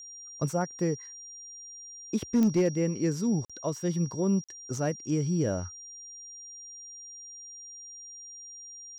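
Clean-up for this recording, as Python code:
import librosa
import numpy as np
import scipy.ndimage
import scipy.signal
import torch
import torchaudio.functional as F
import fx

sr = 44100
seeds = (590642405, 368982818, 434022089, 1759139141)

y = fx.fix_declip(x, sr, threshold_db=-18.5)
y = fx.fix_declick_ar(y, sr, threshold=10.0)
y = fx.notch(y, sr, hz=5700.0, q=30.0)
y = fx.fix_interpolate(y, sr, at_s=(3.45, 4.44), length_ms=46.0)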